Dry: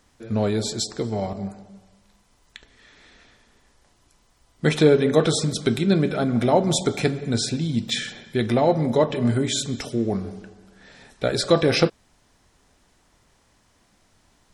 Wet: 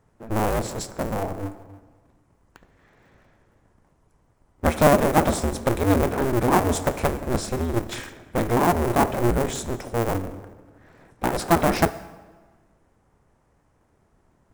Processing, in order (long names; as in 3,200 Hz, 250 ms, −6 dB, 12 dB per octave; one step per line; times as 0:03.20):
sub-harmonics by changed cycles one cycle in 2, inverted
parametric band 3,900 Hz −12 dB 1.6 octaves
dense smooth reverb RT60 1.5 s, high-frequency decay 0.95×, DRR 14 dB
one half of a high-frequency compander decoder only